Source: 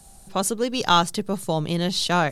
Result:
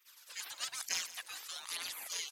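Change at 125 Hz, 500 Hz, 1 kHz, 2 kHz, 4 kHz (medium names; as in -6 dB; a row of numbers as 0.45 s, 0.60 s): under -40 dB, -36.0 dB, -29.0 dB, -14.0 dB, -14.0 dB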